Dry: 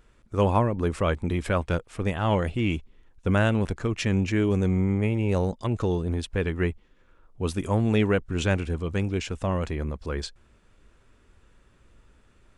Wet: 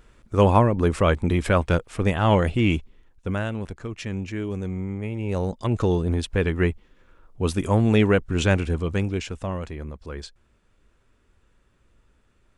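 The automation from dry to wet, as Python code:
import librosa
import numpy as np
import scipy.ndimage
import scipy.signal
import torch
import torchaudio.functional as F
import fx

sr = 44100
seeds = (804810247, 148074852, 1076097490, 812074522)

y = fx.gain(x, sr, db=fx.line((2.76, 5.0), (3.45, -6.0), (5.03, -6.0), (5.76, 4.0), (8.82, 4.0), (9.7, -4.5)))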